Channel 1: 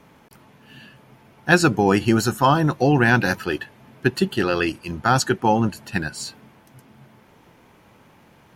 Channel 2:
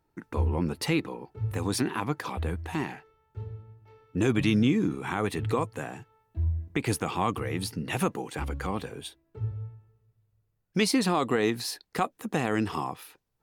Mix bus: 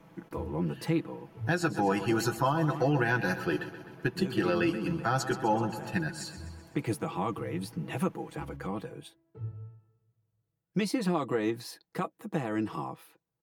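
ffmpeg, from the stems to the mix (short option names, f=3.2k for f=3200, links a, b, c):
-filter_complex "[0:a]aemphasis=mode=production:type=75kf,acrossover=split=490[a][b];[a]acompressor=threshold=-21dB:ratio=6[c];[c][b]amix=inputs=2:normalize=0,volume=-4.5dB,asplit=3[d][e][f];[e]volume=-13.5dB[g];[1:a]highpass=84,aemphasis=mode=production:type=50fm,volume=-3.5dB[h];[f]apad=whole_len=591872[i];[h][i]sidechaincompress=threshold=-26dB:ratio=8:attack=16:release=897[j];[g]aecho=0:1:127|254|381|508|635|762|889|1016|1143:1|0.58|0.336|0.195|0.113|0.0656|0.0381|0.0221|0.0128[k];[d][j][k]amix=inputs=3:normalize=0,lowpass=f=1k:p=1,aecho=1:1:6.1:0.63,alimiter=limit=-16.5dB:level=0:latency=1:release=353"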